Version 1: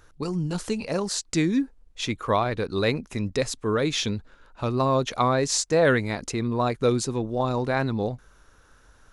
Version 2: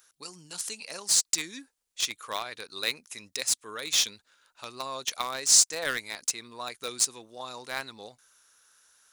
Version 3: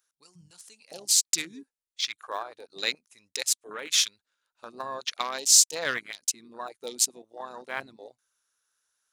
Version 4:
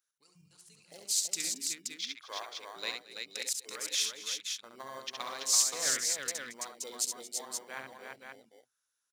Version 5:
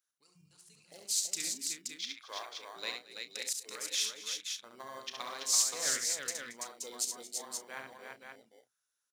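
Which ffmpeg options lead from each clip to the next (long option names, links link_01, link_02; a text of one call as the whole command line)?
ffmpeg -i in.wav -filter_complex "[0:a]aderivative,asplit=2[link_01][link_02];[link_02]acrusher=bits=4:mix=0:aa=0.000001,volume=-8dB[link_03];[link_01][link_03]amix=inputs=2:normalize=0,volume=5.5dB" out.wav
ffmpeg -i in.wav -af "afwtdn=0.0141,volume=1.5dB" out.wav
ffmpeg -i in.wav -filter_complex "[0:a]acrossover=split=750[link_01][link_02];[link_01]acrusher=samples=17:mix=1:aa=0.000001[link_03];[link_03][link_02]amix=inputs=2:normalize=0,aecho=1:1:68|226|333|522|526:0.531|0.133|0.596|0.15|0.501,volume=-9dB" out.wav
ffmpeg -i in.wav -filter_complex "[0:a]asplit=2[link_01][link_02];[link_02]adelay=33,volume=-12.5dB[link_03];[link_01][link_03]amix=inputs=2:normalize=0,volume=-2dB" out.wav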